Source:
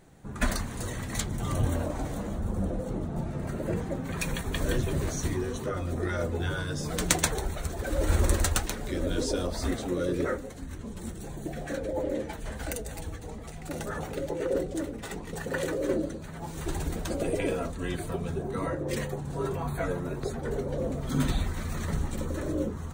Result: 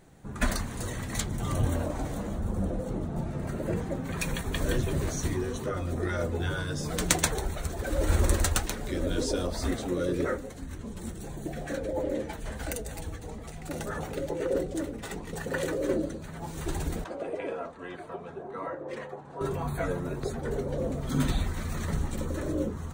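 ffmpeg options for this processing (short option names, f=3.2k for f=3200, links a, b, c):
-filter_complex "[0:a]asettb=1/sr,asplit=3[a][b][c];[a]atrim=end=17.044[d];[b]atrim=start=17.04:end=19.41,asetpts=PTS-STARTPTS,afade=t=in:d=0.004:c=qsin,afade=t=out:st=2.366:d=0.004:c=qsin,bandpass=f=920:t=q:w=0.91[e];[c]atrim=start=19.406[f];[d][e]acrossfade=d=0.004:c1=hsin:c2=qsin[g];[g][f]acrossfade=d=0.004:c1=qsin:c2=hsin"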